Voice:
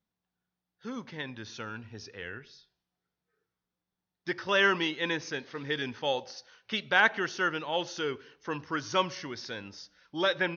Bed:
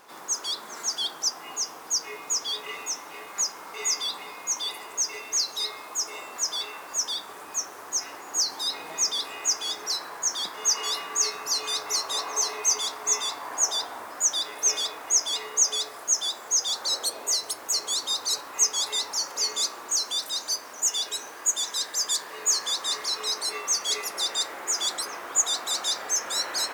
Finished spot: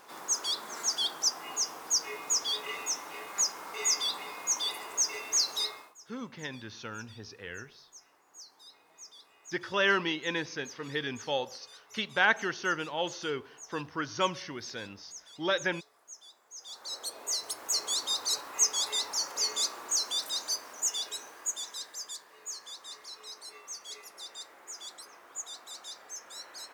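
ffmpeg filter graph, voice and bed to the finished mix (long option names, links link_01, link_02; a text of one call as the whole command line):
ffmpeg -i stem1.wav -i stem2.wav -filter_complex "[0:a]adelay=5250,volume=-1.5dB[link_01];[1:a]volume=20dB,afade=type=out:start_time=5.59:duration=0.35:silence=0.0668344,afade=type=in:start_time=16.54:duration=1.23:silence=0.0841395,afade=type=out:start_time=20.35:duration=1.89:silence=0.211349[link_02];[link_01][link_02]amix=inputs=2:normalize=0" out.wav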